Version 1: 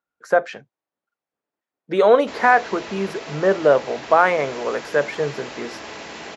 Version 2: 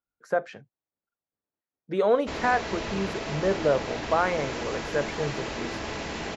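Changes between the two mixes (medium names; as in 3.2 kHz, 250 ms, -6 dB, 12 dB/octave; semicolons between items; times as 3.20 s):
speech -10.0 dB; master: remove high-pass 370 Hz 6 dB/octave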